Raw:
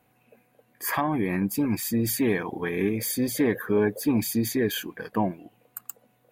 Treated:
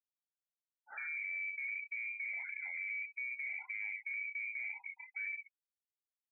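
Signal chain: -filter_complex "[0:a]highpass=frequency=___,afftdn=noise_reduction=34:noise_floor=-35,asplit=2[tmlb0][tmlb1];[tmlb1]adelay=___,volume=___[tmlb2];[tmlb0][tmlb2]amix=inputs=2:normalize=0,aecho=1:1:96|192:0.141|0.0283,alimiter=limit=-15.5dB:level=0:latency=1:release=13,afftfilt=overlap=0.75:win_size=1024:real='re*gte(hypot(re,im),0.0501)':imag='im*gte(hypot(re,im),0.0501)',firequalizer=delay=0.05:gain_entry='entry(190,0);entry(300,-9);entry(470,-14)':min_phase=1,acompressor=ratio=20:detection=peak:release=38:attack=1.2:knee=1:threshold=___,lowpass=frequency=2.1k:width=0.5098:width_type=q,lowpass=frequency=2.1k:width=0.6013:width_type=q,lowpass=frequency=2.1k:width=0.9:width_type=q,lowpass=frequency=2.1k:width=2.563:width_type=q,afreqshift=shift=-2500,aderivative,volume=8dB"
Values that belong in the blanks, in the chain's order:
96, 32, -3dB, -35dB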